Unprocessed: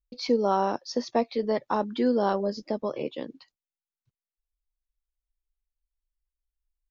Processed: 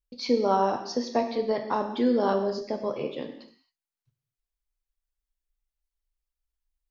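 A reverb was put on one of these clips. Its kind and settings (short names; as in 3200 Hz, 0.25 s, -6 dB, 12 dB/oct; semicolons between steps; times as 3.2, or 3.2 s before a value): non-linear reverb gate 0.29 s falling, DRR 4 dB; gain -1 dB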